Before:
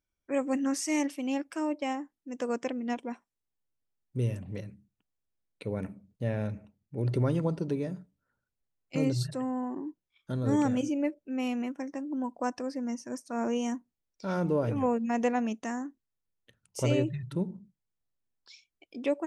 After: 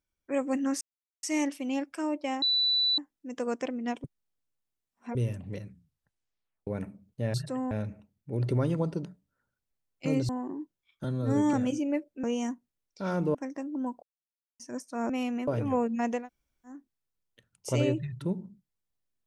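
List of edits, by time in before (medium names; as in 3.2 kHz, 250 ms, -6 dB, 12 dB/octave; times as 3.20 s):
0.81 s: insert silence 0.42 s
2.00 s: add tone 3.97 kHz -22.5 dBFS 0.56 s
3.06–4.17 s: reverse
4.68 s: tape stop 1.01 s
7.70–7.95 s: delete
9.19–9.56 s: move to 6.36 s
10.31–10.64 s: stretch 1.5×
11.34–11.72 s: swap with 13.47–14.58 s
12.40–12.97 s: mute
15.28–15.86 s: room tone, crossfade 0.24 s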